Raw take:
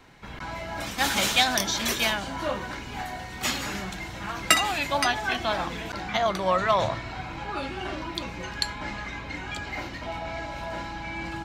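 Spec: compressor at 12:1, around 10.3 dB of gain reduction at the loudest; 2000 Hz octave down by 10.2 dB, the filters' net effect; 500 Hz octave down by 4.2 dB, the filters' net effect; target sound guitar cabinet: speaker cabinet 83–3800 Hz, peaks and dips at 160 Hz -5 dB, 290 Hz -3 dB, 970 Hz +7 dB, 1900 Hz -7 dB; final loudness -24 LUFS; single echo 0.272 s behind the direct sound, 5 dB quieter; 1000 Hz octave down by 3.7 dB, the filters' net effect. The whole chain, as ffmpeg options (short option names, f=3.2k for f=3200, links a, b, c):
-af "equalizer=f=500:t=o:g=-3,equalizer=f=1k:t=o:g=-5.5,equalizer=f=2k:t=o:g=-8.5,acompressor=threshold=-33dB:ratio=12,highpass=83,equalizer=f=160:t=q:w=4:g=-5,equalizer=f=290:t=q:w=4:g=-3,equalizer=f=970:t=q:w=4:g=7,equalizer=f=1.9k:t=q:w=4:g=-7,lowpass=f=3.8k:w=0.5412,lowpass=f=3.8k:w=1.3066,aecho=1:1:272:0.562,volume=14dB"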